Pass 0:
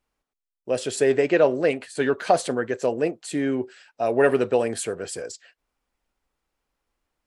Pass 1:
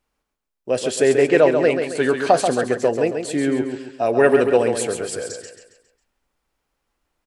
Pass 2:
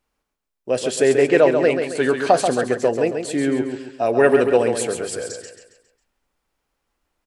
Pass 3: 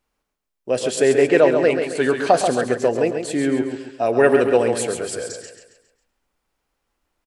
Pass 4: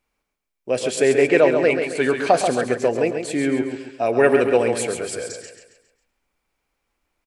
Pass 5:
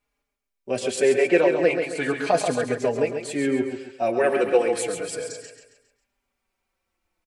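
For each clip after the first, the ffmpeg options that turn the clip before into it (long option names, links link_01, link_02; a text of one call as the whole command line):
ffmpeg -i in.wav -af "aecho=1:1:136|272|408|544|680:0.473|0.194|0.0795|0.0326|0.0134,volume=3.5dB" out.wav
ffmpeg -i in.wav -af "bandreject=frequency=50.28:width_type=h:width=4,bandreject=frequency=100.56:width_type=h:width=4,bandreject=frequency=150.84:width_type=h:width=4" out.wav
ffmpeg -i in.wav -filter_complex "[0:a]asplit=2[link_01][link_02];[link_02]adelay=110.8,volume=-14dB,highshelf=frequency=4000:gain=-2.49[link_03];[link_01][link_03]amix=inputs=2:normalize=0" out.wav
ffmpeg -i in.wav -af "equalizer=frequency=2300:width_type=o:width=0.21:gain=8.5,volume=-1dB" out.wav
ffmpeg -i in.wav -filter_complex "[0:a]asplit=2[link_01][link_02];[link_02]adelay=4.4,afreqshift=-0.36[link_03];[link_01][link_03]amix=inputs=2:normalize=1" out.wav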